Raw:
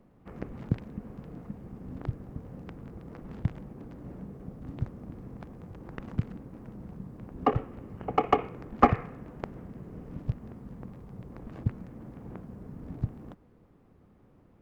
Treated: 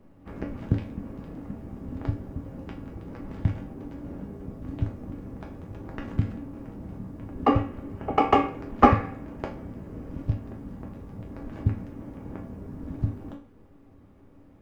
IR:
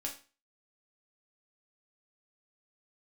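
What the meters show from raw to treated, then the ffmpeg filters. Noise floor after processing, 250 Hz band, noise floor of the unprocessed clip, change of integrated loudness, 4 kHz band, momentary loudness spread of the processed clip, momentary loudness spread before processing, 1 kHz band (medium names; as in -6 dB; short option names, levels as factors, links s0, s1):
-53 dBFS, +6.0 dB, -60 dBFS, +5.0 dB, +6.0 dB, 17 LU, 16 LU, +4.5 dB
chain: -filter_complex "[1:a]atrim=start_sample=2205[s0];[0:a][s0]afir=irnorm=-1:irlink=0,volume=1.78"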